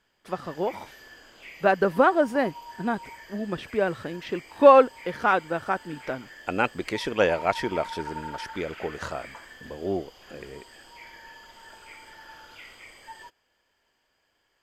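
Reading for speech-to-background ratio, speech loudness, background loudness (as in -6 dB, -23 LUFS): 18.5 dB, -25.0 LUFS, -43.5 LUFS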